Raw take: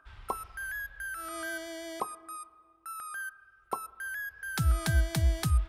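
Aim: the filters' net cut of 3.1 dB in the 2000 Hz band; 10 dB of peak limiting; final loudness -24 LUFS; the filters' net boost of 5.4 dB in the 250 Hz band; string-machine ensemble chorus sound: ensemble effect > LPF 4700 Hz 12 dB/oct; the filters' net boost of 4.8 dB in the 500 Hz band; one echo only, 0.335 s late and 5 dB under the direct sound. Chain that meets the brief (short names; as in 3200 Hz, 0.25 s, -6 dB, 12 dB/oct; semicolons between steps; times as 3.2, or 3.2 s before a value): bell 250 Hz +7.5 dB; bell 500 Hz +5.5 dB; bell 2000 Hz -5 dB; limiter -24.5 dBFS; echo 0.335 s -5 dB; ensemble effect; LPF 4700 Hz 12 dB/oct; gain +16 dB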